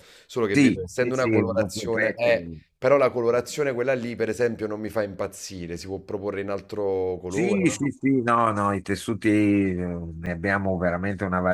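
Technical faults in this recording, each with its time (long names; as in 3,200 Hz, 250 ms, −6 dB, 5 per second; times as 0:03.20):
0:10.26–0:10.27: drop-out 5.8 ms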